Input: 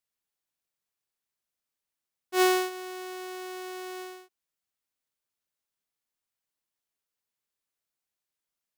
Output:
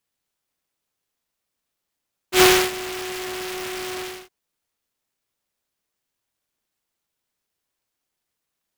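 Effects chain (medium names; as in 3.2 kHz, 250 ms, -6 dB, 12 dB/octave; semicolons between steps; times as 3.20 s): delay time shaken by noise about 2 kHz, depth 0.22 ms; trim +8.5 dB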